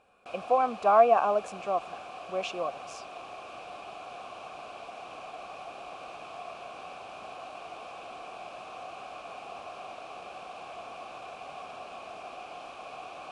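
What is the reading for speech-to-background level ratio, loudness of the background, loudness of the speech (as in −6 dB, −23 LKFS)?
16.5 dB, −43.0 LKFS, −26.5 LKFS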